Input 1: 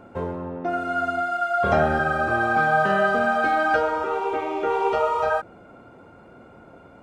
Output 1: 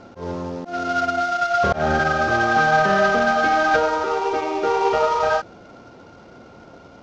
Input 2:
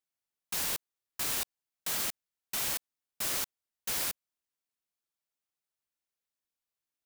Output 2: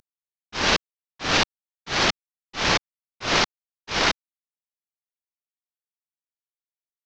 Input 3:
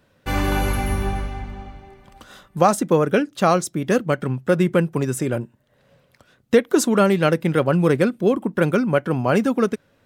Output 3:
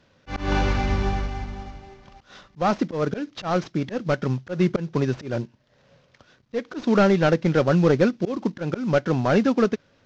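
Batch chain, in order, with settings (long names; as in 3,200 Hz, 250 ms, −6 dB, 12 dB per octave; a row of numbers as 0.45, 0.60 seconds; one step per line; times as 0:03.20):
variable-slope delta modulation 32 kbit/s
volume swells 165 ms
normalise the peak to −6 dBFS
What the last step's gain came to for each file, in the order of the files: +3.5, +19.5, 0.0 decibels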